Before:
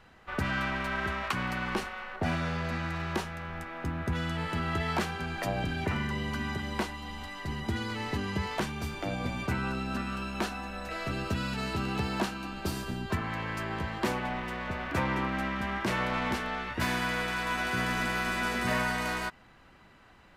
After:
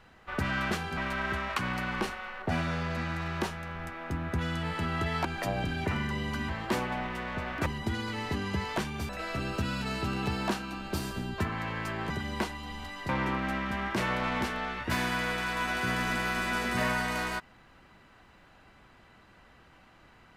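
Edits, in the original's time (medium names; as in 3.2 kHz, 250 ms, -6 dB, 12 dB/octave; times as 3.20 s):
4.99–5.25 s: move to 0.71 s
6.49–7.48 s: swap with 13.82–14.99 s
8.91–10.81 s: delete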